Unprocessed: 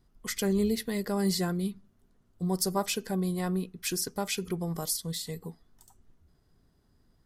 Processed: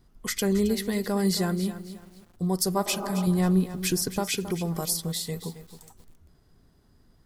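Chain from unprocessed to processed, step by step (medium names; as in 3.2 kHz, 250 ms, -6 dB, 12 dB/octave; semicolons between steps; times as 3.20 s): 2.88–3.23 s: spectral replace 230–1500 Hz before; 3.27–4.19 s: bass shelf 300 Hz +8.5 dB; in parallel at -3 dB: compression, threshold -38 dBFS, peak gain reduction 16 dB; on the sum: bit-crushed delay 270 ms, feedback 35%, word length 8-bit, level -12.5 dB; trim +1.5 dB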